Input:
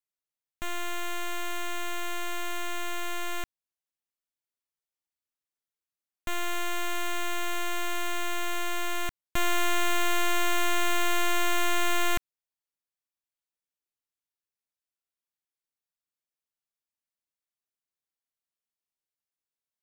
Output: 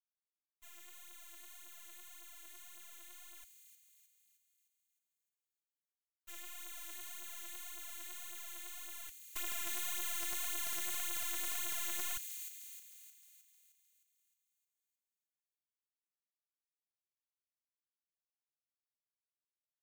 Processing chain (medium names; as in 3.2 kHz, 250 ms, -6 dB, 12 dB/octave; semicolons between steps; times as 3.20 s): expander -20 dBFS; phaser 1.8 Hz, delay 3.5 ms, feedback 67%; compression 2:1, threshold -29 dBFS, peak gain reduction 5 dB; pre-emphasis filter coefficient 0.9; integer overflow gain 25.5 dB; on a send: feedback echo behind a high-pass 309 ms, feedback 52%, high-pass 3.8 kHz, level -5 dB; on the sum: trim +2 dB